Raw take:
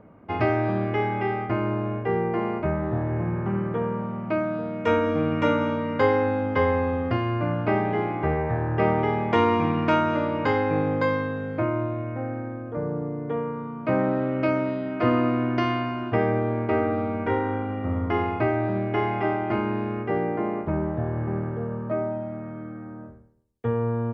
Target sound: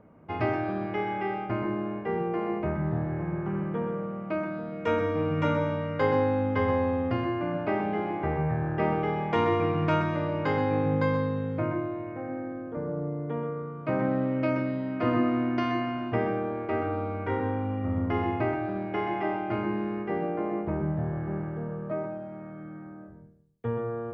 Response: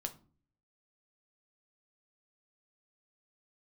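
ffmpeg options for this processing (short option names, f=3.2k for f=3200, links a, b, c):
-filter_complex "[0:a]asplit=2[a][b];[b]equalizer=f=150:t=o:w=0.77:g=13.5[c];[1:a]atrim=start_sample=2205,asetrate=70560,aresample=44100,adelay=126[d];[c][d]afir=irnorm=-1:irlink=0,volume=-3dB[e];[a][e]amix=inputs=2:normalize=0,volume=-5dB"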